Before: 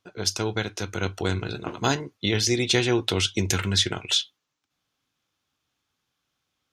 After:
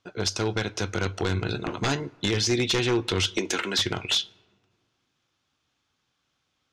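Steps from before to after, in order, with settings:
0:03.37–0:03.79: high-pass filter 260 Hz 24 dB per octave
downward compressor 2 to 1, threshold −25 dBFS, peak gain reduction 5.5 dB
wave folding −19.5 dBFS
low-pass filter 7,200 Hz 12 dB per octave
on a send: convolution reverb RT60 1.8 s, pre-delay 3 ms, DRR 23 dB
on the sum: level +3.5 dB

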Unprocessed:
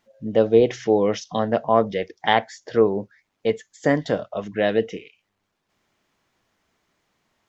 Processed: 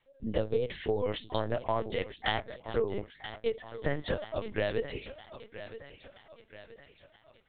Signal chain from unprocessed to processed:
high-shelf EQ 2,800 Hz +10 dB
downward compressor 6 to 1, threshold −20 dBFS, peak gain reduction 10.5 dB
feedback echo with a high-pass in the loop 973 ms, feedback 56%, high-pass 390 Hz, level −11.5 dB
linear-prediction vocoder at 8 kHz pitch kept
level −6 dB

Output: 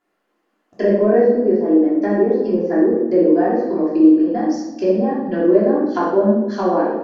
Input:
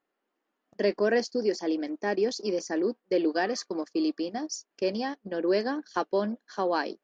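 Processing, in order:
treble cut that deepens with the level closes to 790 Hz, closed at −26 dBFS
rectangular room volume 440 cubic metres, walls mixed, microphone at 3.1 metres
level +4 dB

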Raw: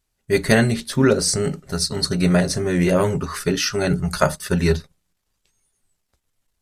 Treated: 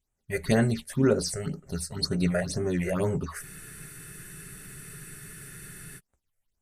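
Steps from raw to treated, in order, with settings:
all-pass phaser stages 6, 2 Hz, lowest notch 250–4,800 Hz
frozen spectrum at 0:03.44, 2.54 s
level −7 dB

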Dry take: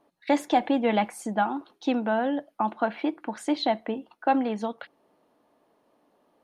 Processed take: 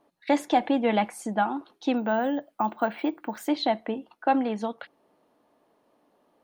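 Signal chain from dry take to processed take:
0:01.97–0:03.48: bad sample-rate conversion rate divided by 2×, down none, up hold

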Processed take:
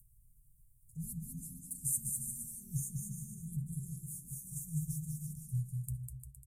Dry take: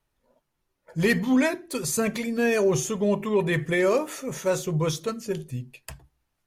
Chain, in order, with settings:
Chebyshev band-stop filter 130–8,400 Hz, order 4
on a send: bouncing-ball delay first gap 200 ms, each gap 0.75×, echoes 5
on the sum: upward compression, threshold −48 dBFS
level −1.5 dB

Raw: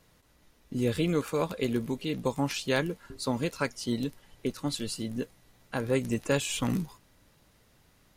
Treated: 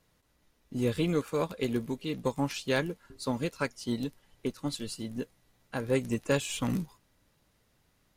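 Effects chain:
in parallel at −6 dB: soft clipping −29 dBFS, distortion −8 dB
on the sum: expander for the loud parts 1.5 to 1, over −39 dBFS
level −1.5 dB

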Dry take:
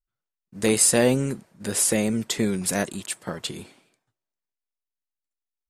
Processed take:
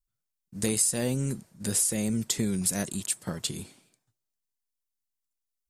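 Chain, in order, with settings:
bass and treble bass +9 dB, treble +11 dB
downward compressor 4 to 1, threshold −18 dBFS, peak gain reduction 12 dB
level −6 dB

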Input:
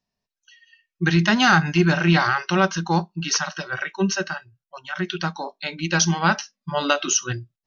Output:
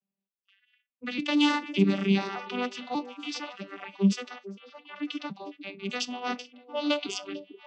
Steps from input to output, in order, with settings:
vocoder with an arpeggio as carrier major triad, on G3, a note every 588 ms
low-pass that shuts in the quiet parts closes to 2,200 Hz, open at −15 dBFS
high shelf with overshoot 2,100 Hz +6.5 dB, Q 3
harmonic generator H 5 −34 dB, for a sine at −2.5 dBFS
echo through a band-pass that steps 448 ms, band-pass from 380 Hz, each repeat 1.4 octaves, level −9.5 dB
level −8 dB

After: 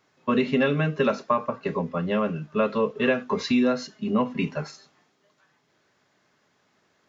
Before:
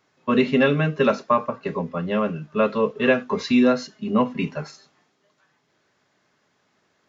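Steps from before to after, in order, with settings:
downward compressor 2 to 1, threshold −21 dBFS, peak gain reduction 5 dB

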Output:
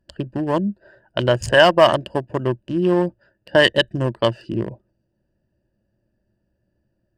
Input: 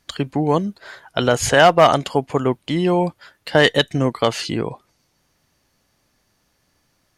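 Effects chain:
adaptive Wiener filter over 41 samples
EQ curve with evenly spaced ripples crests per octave 1.3, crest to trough 10 dB
level −1.5 dB

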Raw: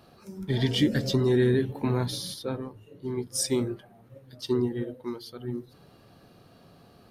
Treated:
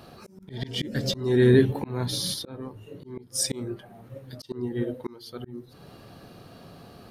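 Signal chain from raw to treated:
volume swells 442 ms
level +7.5 dB

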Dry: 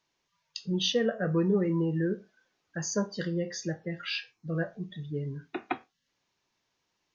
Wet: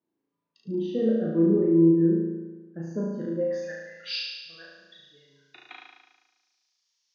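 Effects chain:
band-pass filter sweep 280 Hz → 5,300 Hz, 0:03.26–0:03.91
flutter between parallel walls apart 6.2 metres, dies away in 1.2 s
level +5 dB

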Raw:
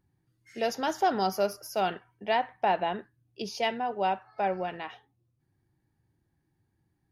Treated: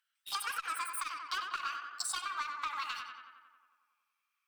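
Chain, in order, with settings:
gliding playback speed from 178% → 140%
Butterworth high-pass 1,200 Hz 36 dB per octave
notch filter 6,800 Hz, Q 8.9
leveller curve on the samples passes 2
downward compressor 10 to 1, threshold −40 dBFS, peak gain reduction 18.5 dB
on a send: tape delay 92 ms, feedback 73%, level −6.5 dB, low-pass 3,100 Hz
on the sum: saturating transformer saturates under 2,700 Hz
level +6.5 dB

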